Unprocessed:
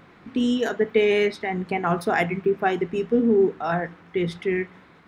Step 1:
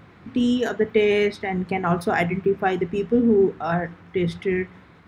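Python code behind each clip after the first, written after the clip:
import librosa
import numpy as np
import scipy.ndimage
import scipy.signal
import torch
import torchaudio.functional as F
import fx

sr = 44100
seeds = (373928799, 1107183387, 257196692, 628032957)

y = fx.peak_eq(x, sr, hz=86.0, db=11.0, octaves=1.4)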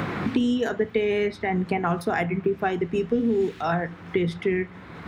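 y = fx.band_squash(x, sr, depth_pct=100)
y = y * librosa.db_to_amplitude(-3.5)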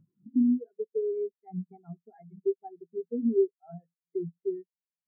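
y = fx.spectral_expand(x, sr, expansion=4.0)
y = y * librosa.db_to_amplitude(-5.0)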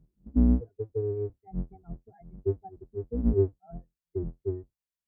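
y = fx.octave_divider(x, sr, octaves=2, level_db=3.0)
y = y * librosa.db_to_amplitude(-1.5)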